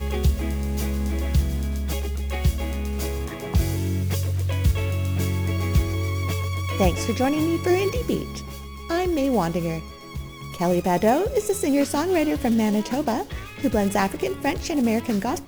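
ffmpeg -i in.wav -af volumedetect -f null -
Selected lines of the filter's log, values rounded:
mean_volume: -23.1 dB
max_volume: -7.6 dB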